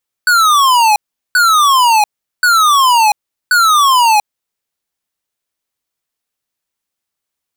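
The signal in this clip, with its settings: burst of laser zaps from 1500 Hz, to 820 Hz, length 0.69 s square, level -9 dB, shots 4, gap 0.39 s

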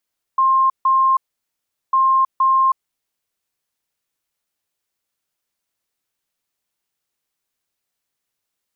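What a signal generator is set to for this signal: beep pattern sine 1060 Hz, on 0.32 s, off 0.15 s, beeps 2, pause 0.76 s, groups 2, -11.5 dBFS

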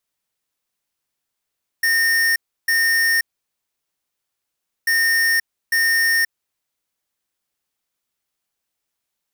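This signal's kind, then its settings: beep pattern square 1830 Hz, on 0.53 s, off 0.32 s, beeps 2, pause 1.66 s, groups 2, -17 dBFS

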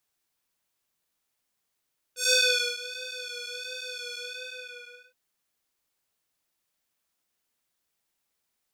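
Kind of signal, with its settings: synth patch with vibrato B4, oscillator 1 square, oscillator 2 square, interval 0 st, detune 20 cents, oscillator 2 level -2 dB, sub -27.5 dB, noise -29 dB, filter bandpass, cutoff 2000 Hz, Q 1.4, filter envelope 2 oct, filter sustain 50%, attack 0.141 s, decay 0.47 s, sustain -18 dB, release 0.97 s, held 2.00 s, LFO 1.4 Hz, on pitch 36 cents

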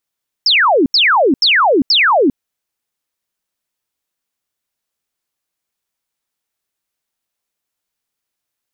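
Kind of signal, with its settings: burst of laser zaps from 5500 Hz, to 240 Hz, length 0.40 s sine, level -8 dB, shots 4, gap 0.08 s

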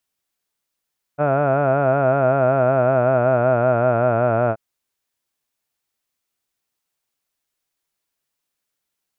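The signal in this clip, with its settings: formant vowel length 3.38 s, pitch 142 Hz, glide -3.5 st, F1 640 Hz, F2 1400 Hz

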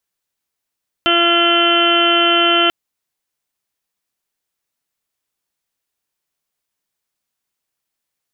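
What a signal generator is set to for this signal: steady additive tone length 1.64 s, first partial 342 Hz, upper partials -1/-13.5/2/-9/-9/-13/-1/3.5/-13.5 dB, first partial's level -18.5 dB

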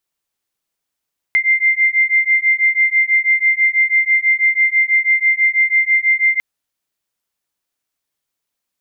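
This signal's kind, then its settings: beating tones 2090 Hz, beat 6.1 Hz, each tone -14.5 dBFS 5.05 s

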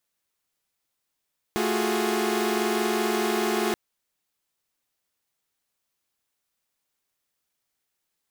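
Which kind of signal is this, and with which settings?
chord A3/F4/F#4/G#4 saw, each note -26 dBFS 2.18 s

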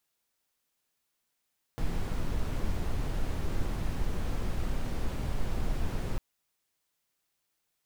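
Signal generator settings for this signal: noise brown, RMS -29 dBFS 4.40 s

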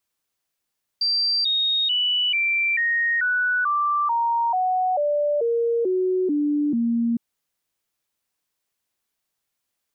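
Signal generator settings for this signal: stepped sine 4700 Hz down, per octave 3, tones 14, 0.44 s, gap 0.00 s -18.5 dBFS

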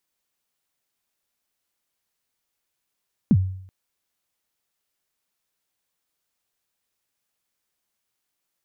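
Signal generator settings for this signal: kick drum length 0.38 s, from 260 Hz, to 94 Hz, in 52 ms, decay 0.65 s, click off, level -10 dB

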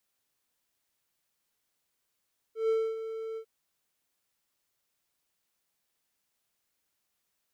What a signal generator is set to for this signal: ADSR triangle 446 Hz, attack 0.141 s, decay 0.263 s, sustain -11.5 dB, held 0.82 s, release 78 ms -21 dBFS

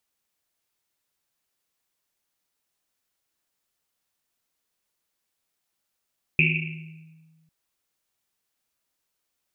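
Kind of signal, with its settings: Risset drum, pitch 160 Hz, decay 1.67 s, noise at 2500 Hz, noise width 490 Hz, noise 55%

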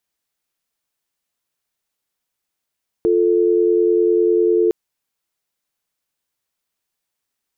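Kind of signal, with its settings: call progress tone dial tone, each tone -15 dBFS 1.66 s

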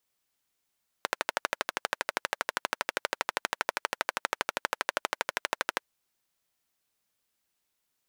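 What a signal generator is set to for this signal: single-cylinder engine model, steady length 4.79 s, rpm 1500, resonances 610/940/1400 Hz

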